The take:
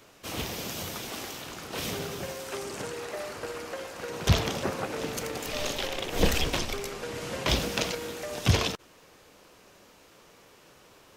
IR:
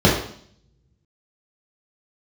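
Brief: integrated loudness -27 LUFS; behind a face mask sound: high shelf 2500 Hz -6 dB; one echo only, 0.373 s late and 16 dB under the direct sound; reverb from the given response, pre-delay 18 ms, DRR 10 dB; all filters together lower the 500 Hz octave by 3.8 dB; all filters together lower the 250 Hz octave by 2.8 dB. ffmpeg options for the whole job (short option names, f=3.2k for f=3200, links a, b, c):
-filter_complex "[0:a]equalizer=f=250:t=o:g=-3,equalizer=f=500:t=o:g=-3.5,aecho=1:1:373:0.158,asplit=2[a][b];[1:a]atrim=start_sample=2205,adelay=18[c];[b][c]afir=irnorm=-1:irlink=0,volume=-33.5dB[d];[a][d]amix=inputs=2:normalize=0,highshelf=f=2.5k:g=-6,volume=5dB"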